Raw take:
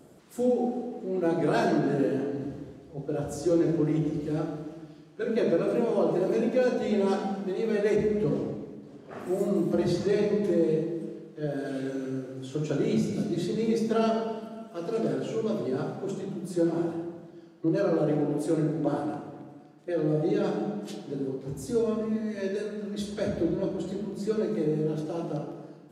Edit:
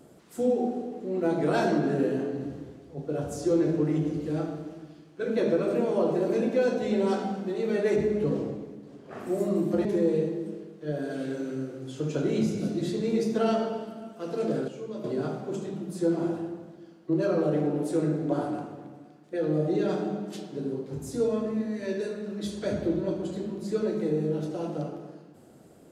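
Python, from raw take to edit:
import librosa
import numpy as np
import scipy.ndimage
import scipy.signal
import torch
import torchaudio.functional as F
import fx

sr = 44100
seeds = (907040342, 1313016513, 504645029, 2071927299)

y = fx.edit(x, sr, fx.cut(start_s=9.85, length_s=0.55),
    fx.clip_gain(start_s=15.23, length_s=0.36, db=-8.0), tone=tone)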